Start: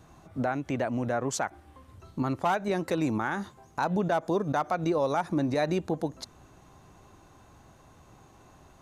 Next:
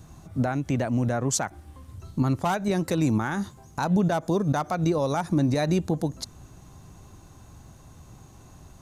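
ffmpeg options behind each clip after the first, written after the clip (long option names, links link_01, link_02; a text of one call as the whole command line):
ffmpeg -i in.wav -af "bass=frequency=250:gain=10,treble=frequency=4000:gain=9" out.wav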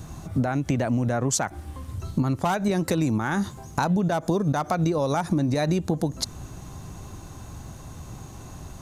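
ffmpeg -i in.wav -af "acompressor=threshold=-29dB:ratio=6,volume=8.5dB" out.wav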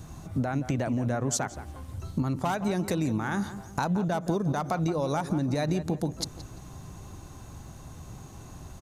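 ffmpeg -i in.wav -filter_complex "[0:a]asplit=2[link_01][link_02];[link_02]adelay=172,lowpass=frequency=2700:poles=1,volume=-12dB,asplit=2[link_03][link_04];[link_04]adelay=172,lowpass=frequency=2700:poles=1,volume=0.36,asplit=2[link_05][link_06];[link_06]adelay=172,lowpass=frequency=2700:poles=1,volume=0.36,asplit=2[link_07][link_08];[link_08]adelay=172,lowpass=frequency=2700:poles=1,volume=0.36[link_09];[link_01][link_03][link_05][link_07][link_09]amix=inputs=5:normalize=0,volume=-4.5dB" out.wav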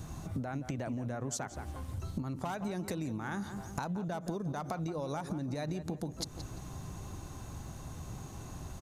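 ffmpeg -i in.wav -af "acompressor=threshold=-34dB:ratio=6" out.wav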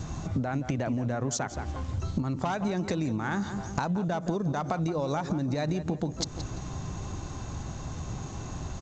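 ffmpeg -i in.wav -af "volume=7.5dB" -ar 16000 -c:a g722 out.g722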